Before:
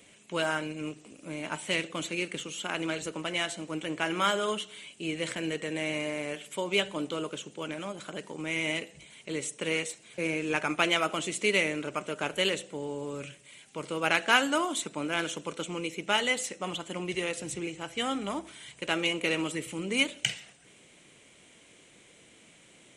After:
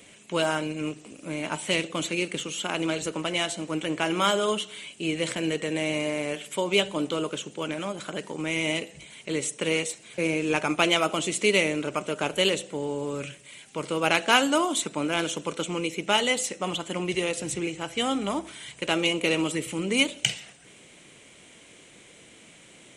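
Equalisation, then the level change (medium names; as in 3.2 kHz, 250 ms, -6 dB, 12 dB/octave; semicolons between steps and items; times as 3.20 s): dynamic bell 1.7 kHz, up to -6 dB, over -42 dBFS, Q 1.6; +5.5 dB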